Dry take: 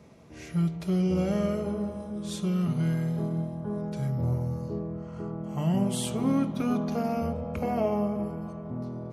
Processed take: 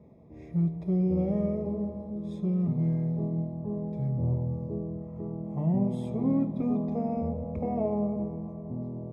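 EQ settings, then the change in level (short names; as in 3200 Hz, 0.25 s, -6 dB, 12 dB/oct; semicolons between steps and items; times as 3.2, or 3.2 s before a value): running mean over 30 samples; 0.0 dB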